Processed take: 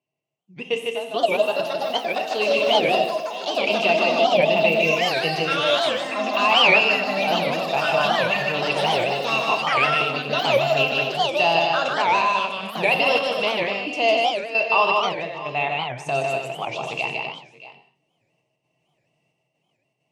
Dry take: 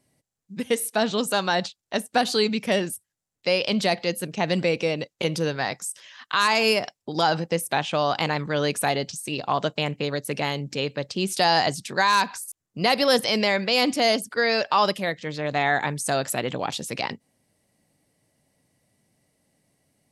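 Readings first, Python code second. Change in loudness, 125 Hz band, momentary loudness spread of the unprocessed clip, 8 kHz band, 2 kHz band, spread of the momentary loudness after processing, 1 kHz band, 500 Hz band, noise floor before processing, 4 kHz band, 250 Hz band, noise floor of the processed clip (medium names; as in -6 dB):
+3.5 dB, -3.0 dB, 10 LU, -8.0 dB, +5.0 dB, 9 LU, +3.5 dB, +4.0 dB, -85 dBFS, +3.5 dB, -3.0 dB, -73 dBFS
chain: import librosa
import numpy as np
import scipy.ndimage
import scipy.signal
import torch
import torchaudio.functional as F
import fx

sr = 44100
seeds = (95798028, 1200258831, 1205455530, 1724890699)

p1 = fx.step_gate(x, sr, bpm=66, pattern='.xxx.x.xx', floor_db=-12.0, edge_ms=4.5)
p2 = fx.ripple_eq(p1, sr, per_octave=0.72, db=11)
p3 = fx.echo_pitch(p2, sr, ms=708, semitones=5, count=3, db_per_echo=-3.0)
p4 = scipy.signal.sosfilt(scipy.signal.butter(2, 110.0, 'highpass', fs=sr, output='sos'), p3)
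p5 = fx.high_shelf_res(p4, sr, hz=5700.0, db=-9.5, q=1.5)
p6 = fx.small_body(p5, sr, hz=(660.0, 2700.0), ring_ms=40, db=17)
p7 = p6 + fx.echo_multitap(p6, sr, ms=(153, 244, 626, 648), db=(-3.0, -7.0, -18.5, -19.5), dry=0)
p8 = fx.rev_gated(p7, sr, seeds[0], gate_ms=250, shape='falling', drr_db=6.0)
p9 = fx.record_warp(p8, sr, rpm=78.0, depth_cents=250.0)
y = p9 * 10.0 ** (-7.0 / 20.0)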